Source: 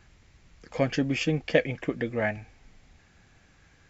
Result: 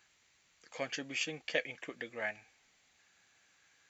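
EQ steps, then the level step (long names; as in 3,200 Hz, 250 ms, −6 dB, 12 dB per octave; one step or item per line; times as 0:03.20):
high-pass filter 1,000 Hz 6 dB per octave
high-shelf EQ 3,400 Hz +8 dB
notch filter 5,200 Hz, Q 10
−7.0 dB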